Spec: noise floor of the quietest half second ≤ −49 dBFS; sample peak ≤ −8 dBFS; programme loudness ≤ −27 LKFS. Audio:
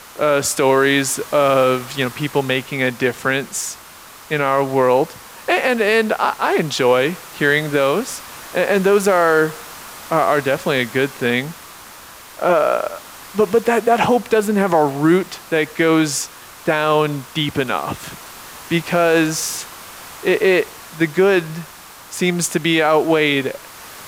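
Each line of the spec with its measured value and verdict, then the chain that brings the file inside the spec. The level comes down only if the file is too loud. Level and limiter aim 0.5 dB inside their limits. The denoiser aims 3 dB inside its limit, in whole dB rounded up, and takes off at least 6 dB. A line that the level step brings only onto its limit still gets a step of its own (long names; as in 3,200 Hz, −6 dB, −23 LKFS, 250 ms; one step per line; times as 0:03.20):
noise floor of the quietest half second −40 dBFS: out of spec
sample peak −3.5 dBFS: out of spec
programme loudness −17.5 LKFS: out of spec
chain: level −10 dB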